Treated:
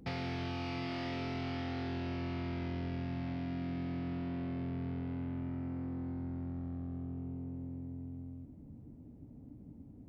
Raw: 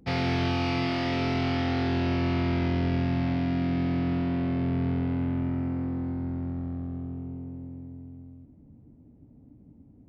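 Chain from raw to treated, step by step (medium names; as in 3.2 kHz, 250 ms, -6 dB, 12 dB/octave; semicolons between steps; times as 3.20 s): compression 3:1, threshold -41 dBFS, peak gain reduction 13.5 dB; trim +1 dB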